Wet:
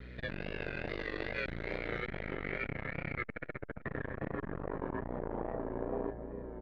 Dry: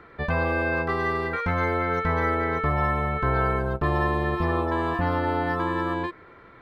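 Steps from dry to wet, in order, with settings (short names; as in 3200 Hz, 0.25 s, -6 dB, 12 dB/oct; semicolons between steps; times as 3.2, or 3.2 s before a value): limiter -22 dBFS, peak gain reduction 10 dB; ring modulator 58 Hz; notches 50/100/150 Hz; hum 60 Hz, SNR 14 dB; band shelf 990 Hz -12.5 dB 1.2 oct; on a send: feedback echo 0.622 s, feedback 31%, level -11 dB; on the sum: vibrato 2.4 Hz 74 cents; doubler 37 ms -11 dB; short-mantissa float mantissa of 4-bit; low-pass sweep 4000 Hz -> 740 Hz, 1.73–5.71; core saturation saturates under 460 Hz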